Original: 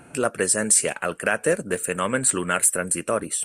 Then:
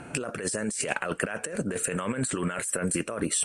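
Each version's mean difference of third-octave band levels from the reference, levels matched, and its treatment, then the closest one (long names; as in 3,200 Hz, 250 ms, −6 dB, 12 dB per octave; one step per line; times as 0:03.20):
6.5 dB: low-pass filter 7,400 Hz 12 dB per octave
compressor whose output falls as the input rises −30 dBFS, ratio −1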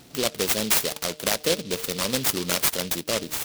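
10.0 dB: hum removal 151.9 Hz, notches 5
short delay modulated by noise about 3,700 Hz, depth 0.2 ms
level −2 dB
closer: first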